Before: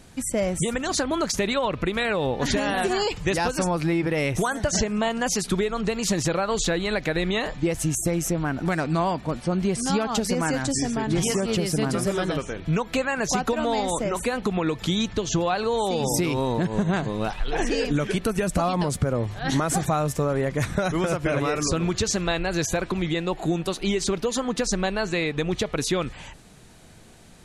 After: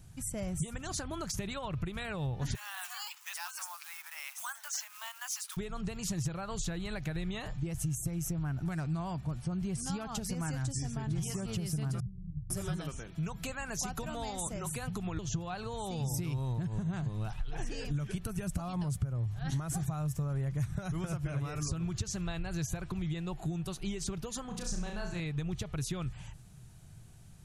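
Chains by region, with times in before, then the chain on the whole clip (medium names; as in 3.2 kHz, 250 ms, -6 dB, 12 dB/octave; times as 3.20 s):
2.55–5.57 s: short-mantissa float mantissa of 2-bit + steep high-pass 920 Hz
12.00–15.19 s: treble shelf 5.5 kHz +6 dB + bands offset in time lows, highs 500 ms, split 150 Hz
24.46–25.20 s: transient shaper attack -11 dB, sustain -5 dB + flutter echo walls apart 5.8 m, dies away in 0.48 s
whole clip: graphic EQ 125/250/500/1000/2000/4000/8000 Hz +9/-11/-12/-6/-9/-8/-4 dB; compression 3:1, threshold -29 dBFS; trim -3 dB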